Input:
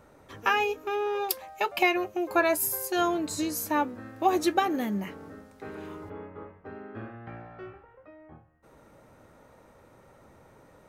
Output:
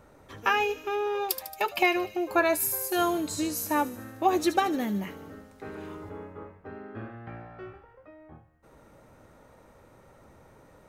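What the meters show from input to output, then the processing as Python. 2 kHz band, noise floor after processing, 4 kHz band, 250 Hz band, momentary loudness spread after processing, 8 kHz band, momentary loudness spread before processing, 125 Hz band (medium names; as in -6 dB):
0.0 dB, -57 dBFS, +0.5 dB, +0.5 dB, 19 LU, +1.0 dB, 19 LU, +1.0 dB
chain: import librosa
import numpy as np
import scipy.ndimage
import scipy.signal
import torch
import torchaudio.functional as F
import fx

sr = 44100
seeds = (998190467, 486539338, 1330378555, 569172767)

p1 = fx.low_shelf(x, sr, hz=66.0, db=5.5)
y = p1 + fx.echo_wet_highpass(p1, sr, ms=75, feedback_pct=66, hz=3900.0, wet_db=-9.0, dry=0)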